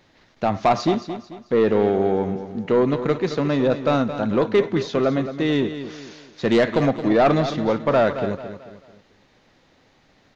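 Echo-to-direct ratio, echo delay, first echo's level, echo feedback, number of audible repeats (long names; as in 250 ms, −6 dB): −10.5 dB, 220 ms, −11.0 dB, 39%, 3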